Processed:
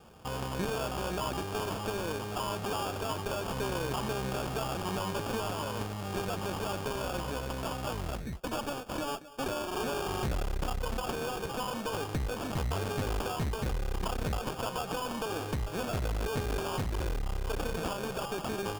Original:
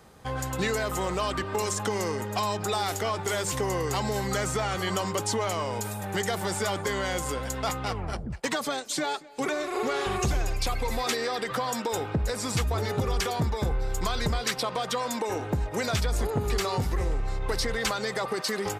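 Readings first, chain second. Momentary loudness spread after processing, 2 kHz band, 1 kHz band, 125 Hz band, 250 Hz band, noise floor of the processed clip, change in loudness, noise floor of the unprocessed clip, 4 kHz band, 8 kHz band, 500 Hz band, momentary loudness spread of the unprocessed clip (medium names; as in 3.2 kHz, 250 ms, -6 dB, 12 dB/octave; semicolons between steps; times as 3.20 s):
3 LU, -7.0 dB, -5.0 dB, -4.5 dB, -4.0 dB, -40 dBFS, -5.5 dB, -37 dBFS, -7.0 dB, -10.0 dB, -5.0 dB, 3 LU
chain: tracing distortion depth 0.5 ms; sample-and-hold 22×; one-sided clip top -35.5 dBFS, bottom -22 dBFS; trim -1.5 dB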